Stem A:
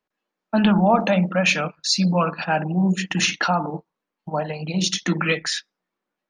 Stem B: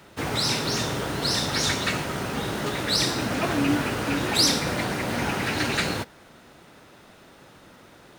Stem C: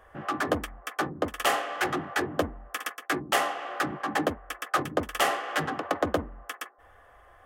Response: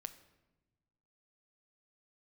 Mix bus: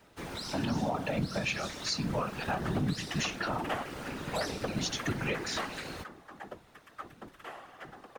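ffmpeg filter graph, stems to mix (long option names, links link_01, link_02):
-filter_complex "[0:a]flanger=delay=0:depth=5.8:regen=77:speed=0.37:shape=sinusoidal,volume=0.5dB,asplit=2[link_01][link_02];[1:a]acompressor=threshold=-26dB:ratio=6,volume=-4.5dB[link_03];[2:a]acrossover=split=3200[link_04][link_05];[link_05]acompressor=threshold=-43dB:ratio=4:attack=1:release=60[link_06];[link_04][link_06]amix=inputs=2:normalize=0,adelay=2250,volume=-2dB[link_07];[link_02]apad=whole_len=427786[link_08];[link_07][link_08]sidechaingate=range=-11dB:threshold=-39dB:ratio=16:detection=peak[link_09];[link_01][link_03][link_09]amix=inputs=3:normalize=0,afftfilt=real='hypot(re,im)*cos(2*PI*random(0))':imag='hypot(re,im)*sin(2*PI*random(1))':win_size=512:overlap=0.75,alimiter=limit=-21.5dB:level=0:latency=1:release=248"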